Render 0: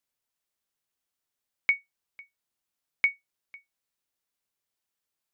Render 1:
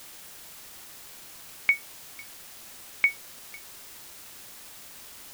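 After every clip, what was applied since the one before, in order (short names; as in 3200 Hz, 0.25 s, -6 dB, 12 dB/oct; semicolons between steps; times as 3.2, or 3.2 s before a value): requantised 8-bit, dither triangular; gain +2 dB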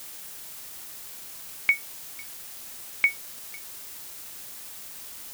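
high shelf 6500 Hz +6.5 dB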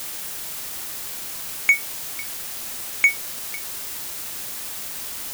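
sample leveller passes 2; gain +2 dB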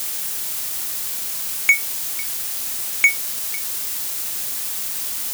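high shelf 3400 Hz +7 dB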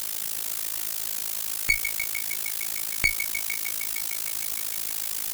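thinning echo 0.153 s, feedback 84%, high-pass 580 Hz, level -11.5 dB; one-sided clip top -22.5 dBFS; AM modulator 54 Hz, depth 90%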